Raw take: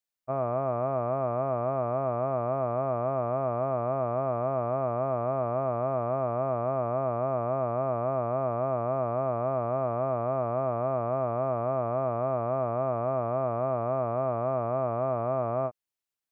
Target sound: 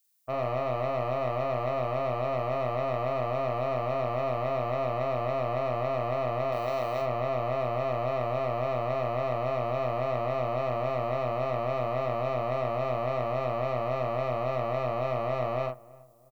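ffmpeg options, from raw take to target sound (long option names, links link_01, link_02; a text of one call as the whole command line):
ffmpeg -i in.wav -filter_complex "[0:a]crystalizer=i=6:c=0,aeval=exprs='(tanh(17.8*val(0)+0.4)-tanh(0.4))/17.8':channel_layout=same,asettb=1/sr,asplit=3[link_01][link_02][link_03];[link_01]atrim=end=6.524[link_04];[link_02]atrim=start=6.52:end=7.02,asetpts=PTS-STARTPTS,afade=type=in:duration=0.004:curve=qsin,afade=type=out:start_time=0.496:duration=0.004:curve=qsin,bass=frequency=250:gain=-6,treble=frequency=4000:gain=12[link_05];[link_03]atrim=start=7.016[link_06];[link_04][link_05]acrossfade=duration=0.004:curve1=hsin:curve2=qsin[link_07];[link_07][link_06]acrossfade=duration=0.004:curve1=qsin:curve2=hsin,asplit=2[link_08][link_09];[link_09]adelay=40,volume=-4.5dB[link_10];[link_08][link_10]amix=inputs=2:normalize=0,asplit=2[link_11][link_12];[link_12]adelay=329,lowpass=frequency=1100:poles=1,volume=-21dB,asplit=2[link_13][link_14];[link_14]adelay=329,lowpass=frequency=1100:poles=1,volume=0.43,asplit=2[link_15][link_16];[link_16]adelay=329,lowpass=frequency=1100:poles=1,volume=0.43[link_17];[link_11][link_13][link_15][link_17]amix=inputs=4:normalize=0" out.wav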